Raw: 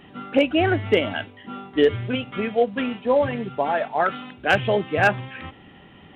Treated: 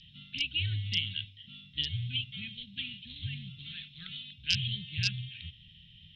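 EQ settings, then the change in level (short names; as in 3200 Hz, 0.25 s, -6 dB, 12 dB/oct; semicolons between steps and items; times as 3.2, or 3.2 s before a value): elliptic band-stop 160–3200 Hz, stop band 80 dB; synth low-pass 5100 Hz, resonance Q 9.1; bell 280 Hz -10 dB 2.2 oct; 0.0 dB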